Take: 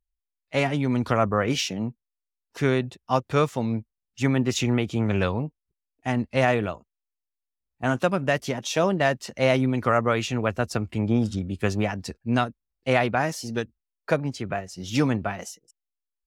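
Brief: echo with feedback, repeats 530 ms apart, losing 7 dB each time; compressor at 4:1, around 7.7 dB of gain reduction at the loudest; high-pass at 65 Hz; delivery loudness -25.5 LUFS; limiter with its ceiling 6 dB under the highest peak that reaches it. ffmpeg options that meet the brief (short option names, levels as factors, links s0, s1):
-af "highpass=65,acompressor=threshold=0.0562:ratio=4,alimiter=limit=0.119:level=0:latency=1,aecho=1:1:530|1060|1590|2120|2650:0.447|0.201|0.0905|0.0407|0.0183,volume=2"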